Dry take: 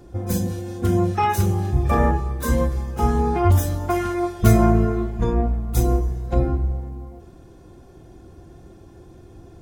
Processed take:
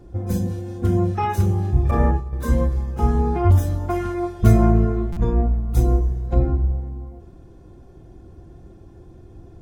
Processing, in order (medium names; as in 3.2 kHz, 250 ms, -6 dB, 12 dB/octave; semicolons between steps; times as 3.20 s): 1.91–2.33 s: expander -17 dBFS; tilt EQ -1.5 dB/octave; buffer glitch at 5.12 s, samples 256, times 7; trim -3.5 dB